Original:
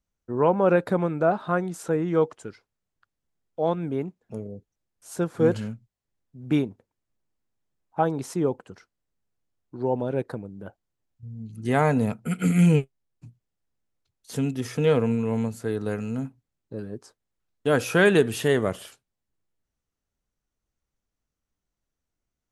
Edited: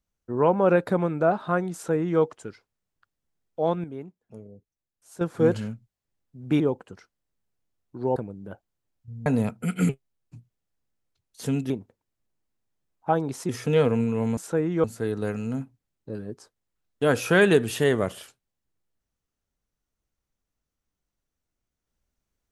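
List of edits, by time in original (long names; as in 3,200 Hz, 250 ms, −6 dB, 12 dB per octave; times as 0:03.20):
0:01.73–0:02.20: duplicate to 0:15.48
0:03.84–0:05.21: clip gain −9 dB
0:06.60–0:08.39: move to 0:14.60
0:09.95–0:10.31: remove
0:11.41–0:11.89: remove
0:12.52–0:12.79: remove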